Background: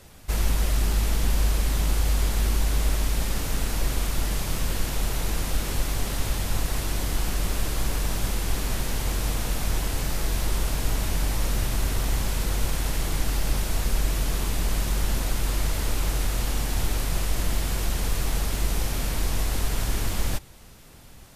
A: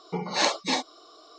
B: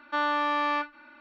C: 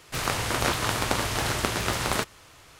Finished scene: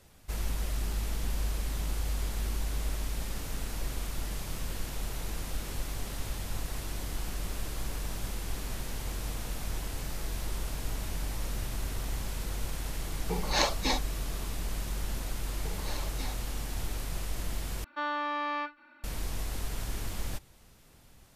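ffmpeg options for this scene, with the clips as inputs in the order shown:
-filter_complex "[1:a]asplit=2[s0][s1];[0:a]volume=0.335[s2];[s1]acompressor=threshold=0.0501:ratio=6:attack=3.2:release=140:knee=1:detection=peak[s3];[s2]asplit=2[s4][s5];[s4]atrim=end=17.844[s6];[2:a]atrim=end=1.2,asetpts=PTS-STARTPTS,volume=0.501[s7];[s5]atrim=start=19.036[s8];[s0]atrim=end=1.38,asetpts=PTS-STARTPTS,volume=0.668,afade=t=in:d=0.004:c=hsin,afade=t=out:st=1.376:d=0.004:c=hsin,adelay=13170[s9];[s3]atrim=end=1.38,asetpts=PTS-STARTPTS,volume=0.251,afade=t=in:d=0.004:c=hsin,afade=t=out:st=1.376:d=0.004:c=hsin,adelay=15520[s10];[s6][s7]acrossfade=d=0.004:c1=hsin:c2=hsin[s11];[s11][s8]acrossfade=d=0.004:c1=hsin:c2=hsin[s12];[s12][s9][s10]amix=inputs=3:normalize=0"

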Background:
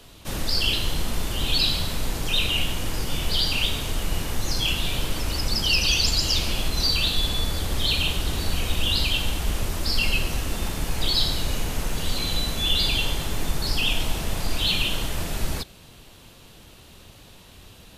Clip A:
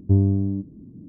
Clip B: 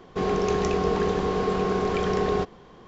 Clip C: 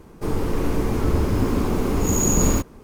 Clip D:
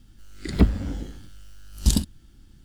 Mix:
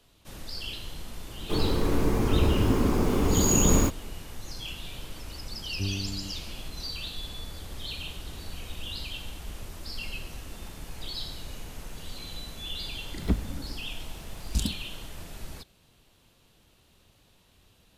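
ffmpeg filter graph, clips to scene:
-filter_complex "[0:a]volume=0.2[s0];[3:a]atrim=end=2.83,asetpts=PTS-STARTPTS,volume=0.75,afade=t=in:d=0.004:c=hsin,afade=t=out:st=2.826:d=0.004:c=hsin,adelay=1280[s1];[1:a]atrim=end=1.08,asetpts=PTS-STARTPTS,volume=0.188,afade=t=in:d=0.004:c=hsin,afade=t=out:st=1.076:d=0.004:c=hsin,adelay=5700[s2];[4:a]atrim=end=2.64,asetpts=PTS-STARTPTS,volume=0.376,afade=t=in:d=0.004:c=hsin,afade=t=out:st=2.636:d=0.004:c=hsin,adelay=12690[s3];[s0][s1][s2][s3]amix=inputs=4:normalize=0"

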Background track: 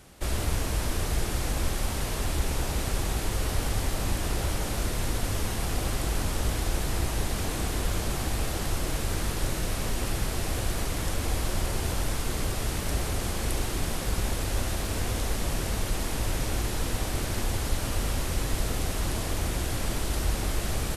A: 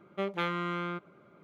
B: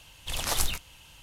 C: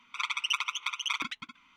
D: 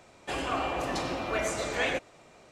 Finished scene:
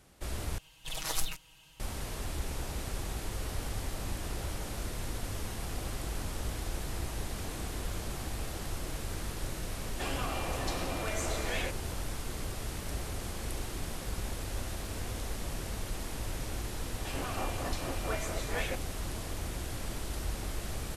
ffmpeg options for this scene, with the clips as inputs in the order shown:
-filter_complex "[4:a]asplit=2[s0][s1];[0:a]volume=0.376[s2];[2:a]aecho=1:1:6.3:0.97[s3];[s0]acrossover=split=130|3000[s4][s5][s6];[s5]acompressor=threshold=0.0251:ratio=6:attack=3.2:release=140:knee=2.83:detection=peak[s7];[s4][s7][s6]amix=inputs=3:normalize=0[s8];[s1]acrossover=split=2300[s9][s10];[s9]aeval=exprs='val(0)*(1-0.7/2+0.7/2*cos(2*PI*4.5*n/s))':c=same[s11];[s10]aeval=exprs='val(0)*(1-0.7/2-0.7/2*cos(2*PI*4.5*n/s))':c=same[s12];[s11][s12]amix=inputs=2:normalize=0[s13];[s2]asplit=2[s14][s15];[s14]atrim=end=0.584[s16];[s3]atrim=end=1.22,asetpts=PTS-STARTPTS,volume=0.355[s17];[s15]atrim=start=1.796[s18];[s8]atrim=end=2.51,asetpts=PTS-STARTPTS,volume=0.794,afade=t=in:d=0.004:c=hsin,afade=t=out:st=2.506:d=0.004:c=hsin,adelay=9720[s19];[s13]atrim=end=2.51,asetpts=PTS-STARTPTS,volume=0.631,afade=t=in:d=0.004:c=hsin,afade=t=out:st=2.506:d=0.004:c=hsin,adelay=16770[s20];[s16][s17]acrossfade=d=0.004:c1=hsin:c2=hsin[s21];[s21][s18]acrossfade=d=0.004:c1=hsin:c2=hsin[s22];[s22][s19][s20]amix=inputs=3:normalize=0"

